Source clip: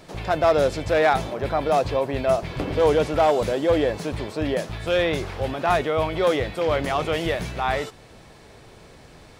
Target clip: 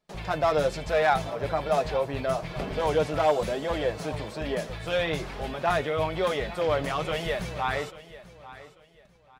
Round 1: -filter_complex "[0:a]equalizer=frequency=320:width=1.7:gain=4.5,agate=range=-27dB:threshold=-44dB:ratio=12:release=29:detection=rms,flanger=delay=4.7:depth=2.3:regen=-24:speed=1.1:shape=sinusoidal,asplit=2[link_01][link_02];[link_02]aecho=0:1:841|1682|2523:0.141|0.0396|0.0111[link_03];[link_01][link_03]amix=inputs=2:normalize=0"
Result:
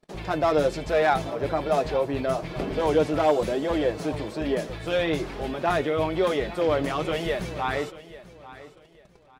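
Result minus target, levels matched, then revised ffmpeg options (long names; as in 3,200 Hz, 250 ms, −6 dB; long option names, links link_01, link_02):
250 Hz band +4.5 dB
-filter_complex "[0:a]equalizer=frequency=320:width=1.7:gain=-4.5,agate=range=-27dB:threshold=-44dB:ratio=12:release=29:detection=rms,flanger=delay=4.7:depth=2.3:regen=-24:speed=1.1:shape=sinusoidal,asplit=2[link_01][link_02];[link_02]aecho=0:1:841|1682|2523:0.141|0.0396|0.0111[link_03];[link_01][link_03]amix=inputs=2:normalize=0"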